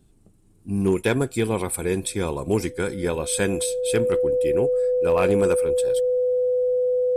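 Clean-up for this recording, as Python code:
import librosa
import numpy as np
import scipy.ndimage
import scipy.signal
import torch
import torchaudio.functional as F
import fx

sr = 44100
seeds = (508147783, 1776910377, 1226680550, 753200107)

y = fx.fix_declip(x, sr, threshold_db=-12.0)
y = fx.notch(y, sr, hz=500.0, q=30.0)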